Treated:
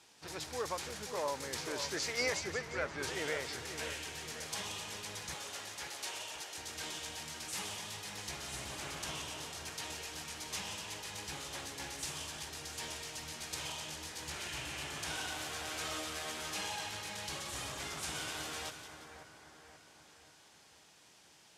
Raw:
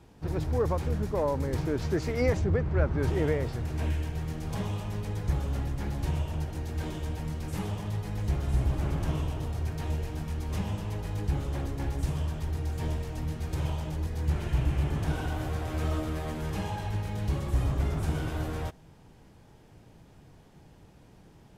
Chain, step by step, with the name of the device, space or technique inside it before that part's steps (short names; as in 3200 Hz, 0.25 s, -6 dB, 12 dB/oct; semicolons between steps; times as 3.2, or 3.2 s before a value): piezo pickup straight into a mixer (LPF 6900 Hz 12 dB/oct; differentiator); 5.34–6.58 HPF 340 Hz 24 dB/oct; split-band echo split 2000 Hz, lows 0.534 s, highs 0.177 s, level -9 dB; gain +12.5 dB